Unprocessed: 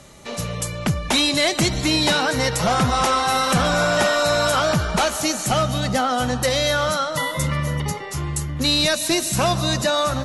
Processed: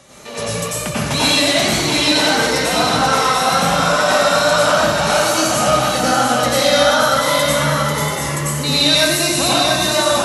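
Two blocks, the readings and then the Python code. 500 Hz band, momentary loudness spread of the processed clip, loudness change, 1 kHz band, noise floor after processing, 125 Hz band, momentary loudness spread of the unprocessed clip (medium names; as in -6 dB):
+6.0 dB, 7 LU, +5.5 dB, +6.0 dB, -23 dBFS, 0.0 dB, 8 LU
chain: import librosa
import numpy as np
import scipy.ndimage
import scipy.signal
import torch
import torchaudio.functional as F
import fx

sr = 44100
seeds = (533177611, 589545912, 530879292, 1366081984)

y = fx.highpass(x, sr, hz=100.0, slope=6)
y = fx.low_shelf(y, sr, hz=220.0, db=-5.5)
y = fx.rider(y, sr, range_db=4, speed_s=2.0)
y = fx.wow_flutter(y, sr, seeds[0], rate_hz=2.1, depth_cents=63.0)
y = y + 10.0 ** (-5.0 / 20.0) * np.pad(y, (int(687 * sr / 1000.0), 0))[:len(y)]
y = fx.rev_plate(y, sr, seeds[1], rt60_s=1.1, hf_ratio=0.8, predelay_ms=80, drr_db=-8.0)
y = y * librosa.db_to_amplitude(-3.5)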